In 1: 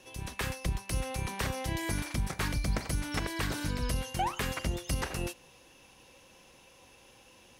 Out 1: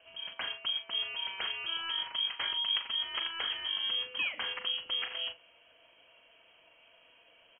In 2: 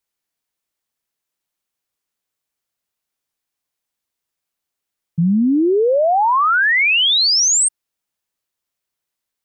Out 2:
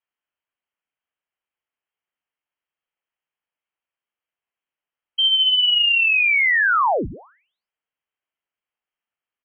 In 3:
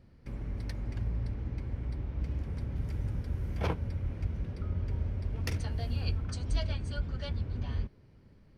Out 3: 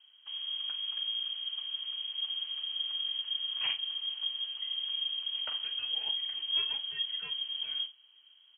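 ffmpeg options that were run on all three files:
-filter_complex "[0:a]asplit=2[s0][s1];[s1]adelay=40,volume=0.299[s2];[s0][s2]amix=inputs=2:normalize=0,lowpass=f=2800:t=q:w=0.5098,lowpass=f=2800:t=q:w=0.6013,lowpass=f=2800:t=q:w=0.9,lowpass=f=2800:t=q:w=2.563,afreqshift=-3300,volume=0.708"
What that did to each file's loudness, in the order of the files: +1.5 LU, -1.5 LU, +3.0 LU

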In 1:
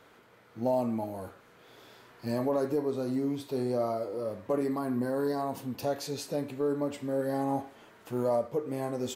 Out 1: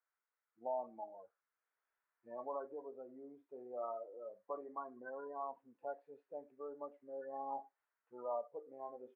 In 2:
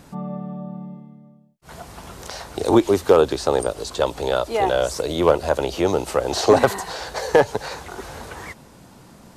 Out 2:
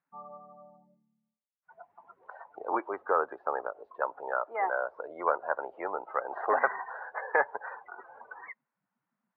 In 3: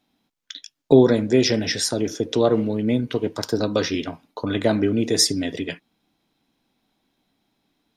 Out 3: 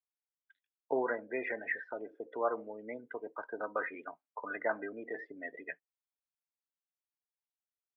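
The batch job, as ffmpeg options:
-af "lowpass=f=2000:w=0.5412,lowpass=f=2000:w=1.3066,afftdn=nr=30:nf=-32,highpass=1200"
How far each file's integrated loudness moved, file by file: -15.0 LU, -12.0 LU, -17.5 LU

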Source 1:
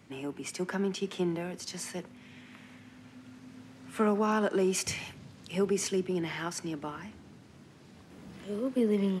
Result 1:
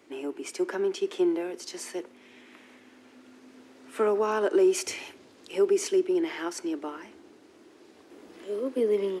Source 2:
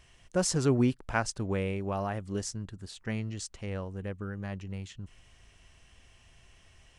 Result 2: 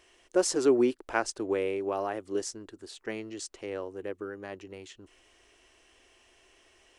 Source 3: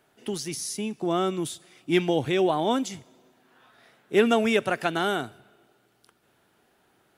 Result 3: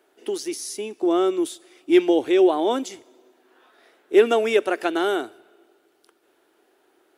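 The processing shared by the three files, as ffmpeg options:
-af "lowshelf=f=230:t=q:w=3:g=-13.5"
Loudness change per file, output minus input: +3.5 LU, +1.5 LU, +4.5 LU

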